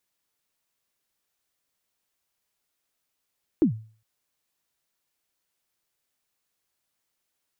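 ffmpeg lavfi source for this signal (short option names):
-f lavfi -i "aevalsrc='0.237*pow(10,-3*t/0.41)*sin(2*PI*(360*0.103/log(110/360)*(exp(log(110/360)*min(t,0.103)/0.103)-1)+110*max(t-0.103,0)))':d=0.41:s=44100"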